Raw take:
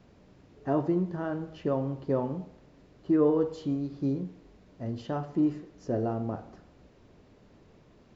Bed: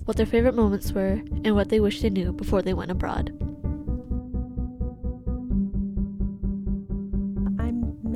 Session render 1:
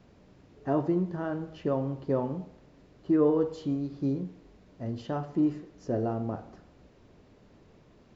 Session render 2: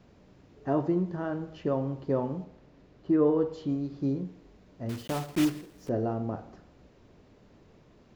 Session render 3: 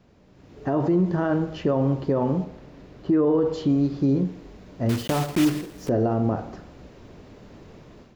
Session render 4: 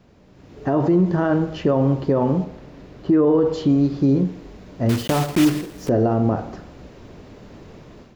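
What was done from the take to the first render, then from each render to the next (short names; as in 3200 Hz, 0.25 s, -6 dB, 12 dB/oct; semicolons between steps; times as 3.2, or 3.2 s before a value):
nothing audible
2.44–3.69 air absorption 58 m; 4.89–5.91 block floating point 3-bit
limiter -25 dBFS, peak gain reduction 11 dB; AGC gain up to 11.5 dB
gain +4 dB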